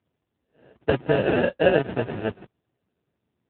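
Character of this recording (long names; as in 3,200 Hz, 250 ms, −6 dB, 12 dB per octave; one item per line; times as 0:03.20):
aliases and images of a low sample rate 1,100 Hz, jitter 0%
tremolo saw up 10 Hz, depth 30%
AMR narrowband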